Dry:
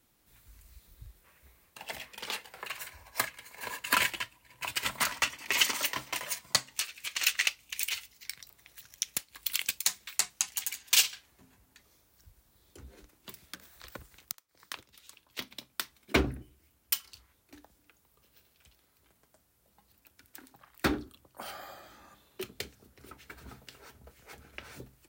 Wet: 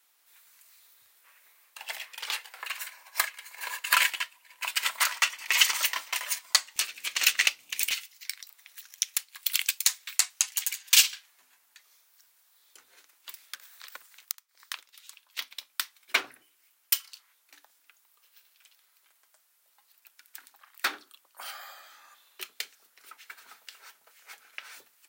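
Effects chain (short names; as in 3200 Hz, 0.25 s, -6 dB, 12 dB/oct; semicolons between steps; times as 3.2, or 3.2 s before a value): HPF 1000 Hz 12 dB/oct, from 6.76 s 250 Hz, from 7.91 s 1200 Hz; gain +4.5 dB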